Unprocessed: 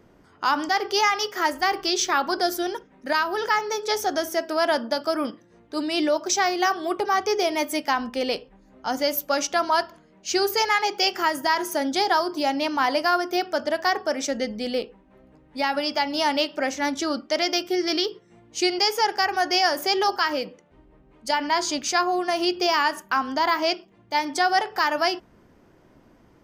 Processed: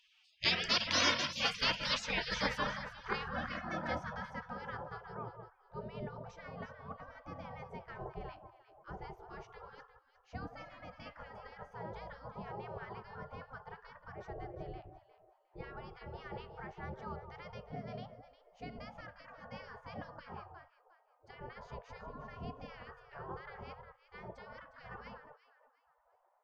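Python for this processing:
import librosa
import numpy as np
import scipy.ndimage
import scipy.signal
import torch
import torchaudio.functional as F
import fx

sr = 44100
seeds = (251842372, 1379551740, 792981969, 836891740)

y = fx.filter_sweep_lowpass(x, sr, from_hz=2200.0, to_hz=240.0, start_s=1.27, end_s=5.21, q=1.2)
y = fx.echo_alternate(y, sr, ms=178, hz=1100.0, feedback_pct=51, wet_db=-7.5)
y = fx.spec_gate(y, sr, threshold_db=-30, keep='weak')
y = y * 10.0 ** (13.0 / 20.0)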